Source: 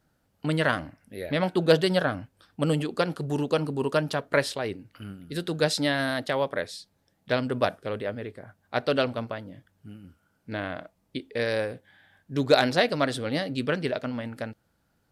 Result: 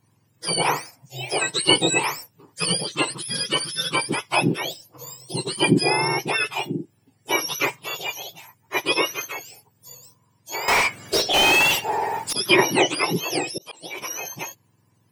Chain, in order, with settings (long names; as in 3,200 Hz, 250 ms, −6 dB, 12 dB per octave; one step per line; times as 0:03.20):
frequency axis turned over on the octave scale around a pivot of 1,200 Hz
0:10.68–0:12.33: mid-hump overdrive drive 39 dB, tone 3,200 Hz, clips at −15.5 dBFS
0:13.43–0:13.98: volume swells 486 ms
level +6.5 dB